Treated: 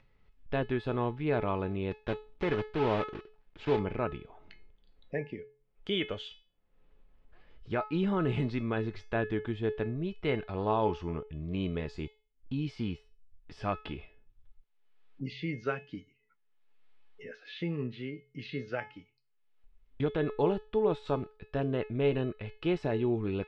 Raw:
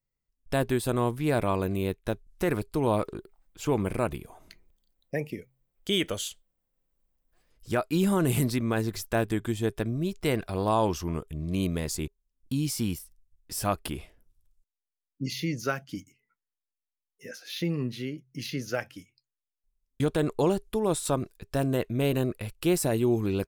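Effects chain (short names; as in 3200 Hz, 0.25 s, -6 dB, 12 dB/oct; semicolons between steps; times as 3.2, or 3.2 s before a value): 1.91–3.8 block floating point 3-bit; LPF 3300 Hz 24 dB/oct; upward compressor, threshold -41 dBFS; resonator 430 Hz, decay 0.34 s, harmonics all, mix 80%; gain +8 dB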